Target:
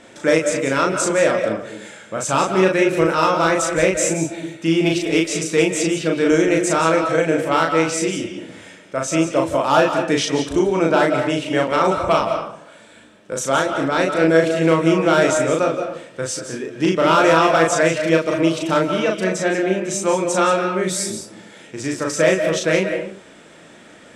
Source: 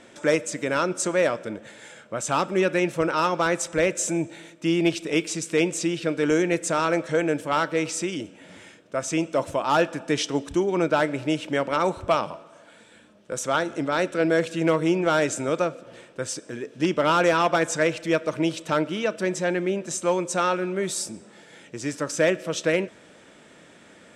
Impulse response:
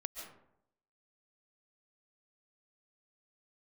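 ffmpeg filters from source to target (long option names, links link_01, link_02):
-filter_complex "[0:a]asplit=2[link_01][link_02];[1:a]atrim=start_sample=2205,afade=type=out:start_time=0.36:duration=0.01,atrim=end_sample=16317,adelay=37[link_03];[link_02][link_03]afir=irnorm=-1:irlink=0,volume=1dB[link_04];[link_01][link_04]amix=inputs=2:normalize=0,volume=3.5dB"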